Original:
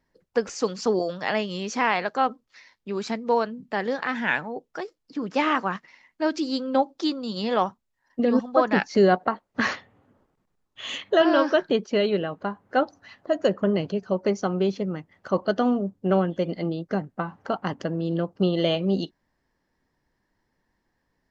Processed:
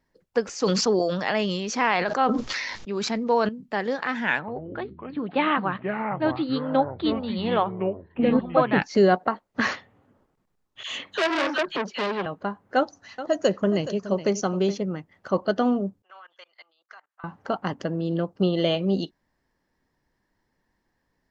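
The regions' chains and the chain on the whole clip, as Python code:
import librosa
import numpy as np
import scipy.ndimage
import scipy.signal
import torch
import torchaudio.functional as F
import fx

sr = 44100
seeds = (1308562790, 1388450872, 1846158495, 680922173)

y = fx.chain(x, sr, fx.resample_bad(factor=3, down='none', up='filtered'),
    fx.sustainer(db_per_s=30.0), at=(0.56, 3.49))
y = fx.chain(y, sr, fx.steep_lowpass(hz=4200.0, slope=96),
    fx.echo_pitch(ms=85, semitones=-6, count=3, db_per_echo=-6.0), at=(4.39, 8.82))
y = fx.chain(y, sr, fx.dispersion(late='lows', ms=61.0, hz=1100.0),
    fx.transformer_sat(knee_hz=2600.0), at=(10.83, 12.26))
y = fx.chain(y, sr, fx.lowpass_res(hz=6600.0, q=3.4),
    fx.echo_single(ms=421, db=-13.0), at=(12.76, 14.78))
y = fx.chain(y, sr, fx.cheby1_highpass(hz=1100.0, order=3),
    fx.high_shelf(hz=4100.0, db=-5.0),
    fx.level_steps(step_db=23), at=(16.02, 17.24))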